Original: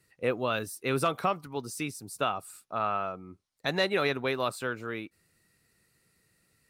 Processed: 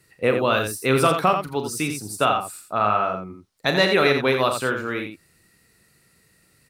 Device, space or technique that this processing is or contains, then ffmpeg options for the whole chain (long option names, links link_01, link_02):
slapback doubling: -filter_complex "[0:a]asplit=3[link_01][link_02][link_03];[link_02]adelay=38,volume=-9dB[link_04];[link_03]adelay=85,volume=-7dB[link_05];[link_01][link_04][link_05]amix=inputs=3:normalize=0,volume=8.5dB"